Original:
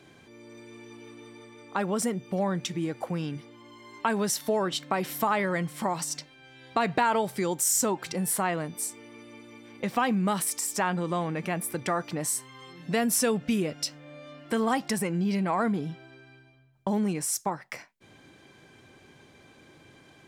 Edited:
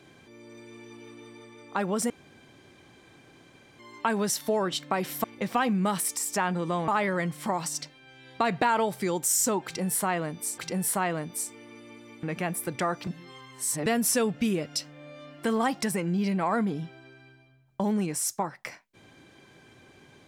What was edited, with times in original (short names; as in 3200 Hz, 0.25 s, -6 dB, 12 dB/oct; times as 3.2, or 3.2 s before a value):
2.1–3.79 room tone
8.01–8.94 loop, 2 plays
9.66–11.3 move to 5.24
12.14–12.93 reverse